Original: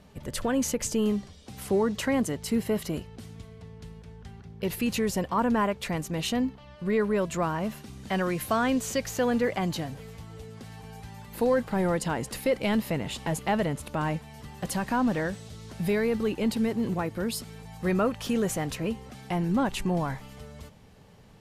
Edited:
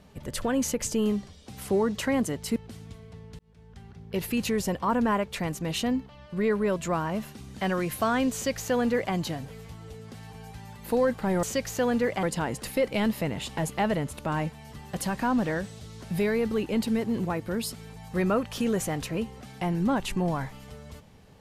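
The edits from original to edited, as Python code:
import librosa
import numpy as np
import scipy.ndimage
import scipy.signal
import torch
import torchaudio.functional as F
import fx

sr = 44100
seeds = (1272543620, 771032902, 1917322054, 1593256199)

y = fx.edit(x, sr, fx.cut(start_s=2.56, length_s=0.49),
    fx.fade_in_span(start_s=3.88, length_s=0.75, curve='qsin'),
    fx.duplicate(start_s=8.83, length_s=0.8, to_s=11.92), tone=tone)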